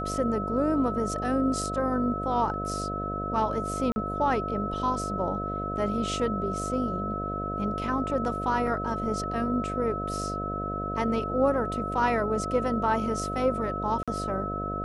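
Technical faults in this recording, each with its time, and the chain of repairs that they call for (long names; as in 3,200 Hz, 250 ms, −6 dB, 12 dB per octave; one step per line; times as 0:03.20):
mains buzz 50 Hz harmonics 14 −34 dBFS
whistle 1,300 Hz −32 dBFS
0:03.92–0:03.96: drop-out 40 ms
0:08.67: drop-out 2.7 ms
0:14.03–0:14.08: drop-out 46 ms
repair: hum removal 50 Hz, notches 14
notch filter 1,300 Hz, Q 30
repair the gap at 0:03.92, 40 ms
repair the gap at 0:08.67, 2.7 ms
repair the gap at 0:14.03, 46 ms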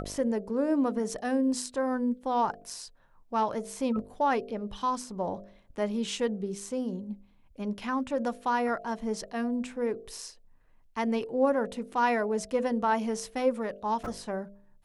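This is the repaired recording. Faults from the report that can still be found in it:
none of them is left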